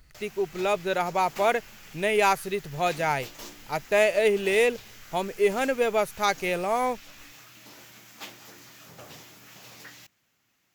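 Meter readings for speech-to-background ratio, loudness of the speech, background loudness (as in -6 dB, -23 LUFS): 19.5 dB, -25.5 LUFS, -45.0 LUFS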